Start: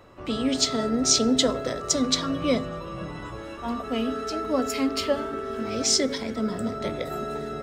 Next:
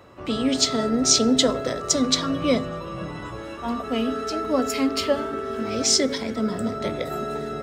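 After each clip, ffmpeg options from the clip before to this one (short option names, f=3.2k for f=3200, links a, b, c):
-af "highpass=53,volume=2.5dB"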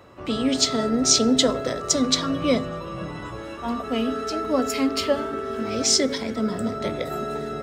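-af anull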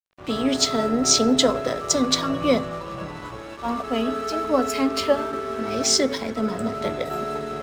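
-af "adynamicequalizer=threshold=0.0112:dfrequency=920:dqfactor=0.88:tfrequency=920:tqfactor=0.88:attack=5:release=100:ratio=0.375:range=2.5:mode=boostabove:tftype=bell,aeval=exprs='sgn(val(0))*max(abs(val(0))-0.00944,0)':c=same"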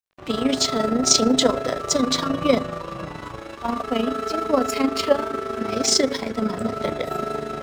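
-af "tremolo=f=26:d=0.621,volume=3.5dB"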